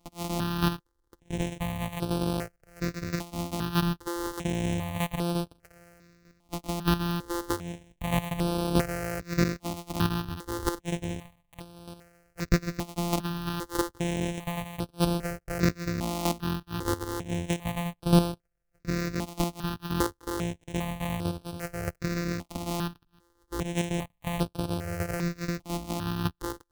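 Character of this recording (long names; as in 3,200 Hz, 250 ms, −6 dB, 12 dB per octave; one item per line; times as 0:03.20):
a buzz of ramps at a fixed pitch in blocks of 256 samples
chopped level 1.6 Hz, depth 60%, duty 10%
notches that jump at a steady rate 2.5 Hz 440–6,900 Hz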